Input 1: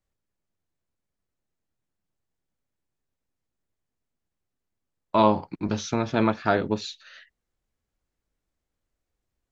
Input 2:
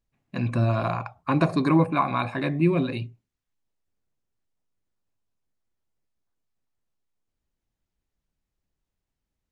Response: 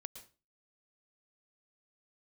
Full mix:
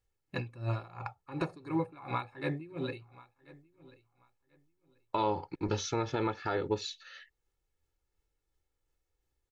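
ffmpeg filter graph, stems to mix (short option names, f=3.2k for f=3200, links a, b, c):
-filter_complex "[0:a]volume=-4dB[a];[1:a]acompressor=threshold=-23dB:ratio=10,aeval=exprs='val(0)*pow(10,-22*(0.5-0.5*cos(2*PI*2.8*n/s))/20)':c=same,volume=-2.5dB,asplit=2[b][c];[c]volume=-21dB,aecho=0:1:1037|2074|3111:1|0.21|0.0441[d];[a][b][d]amix=inputs=3:normalize=0,aecho=1:1:2.3:0.65,alimiter=limit=-19dB:level=0:latency=1:release=284"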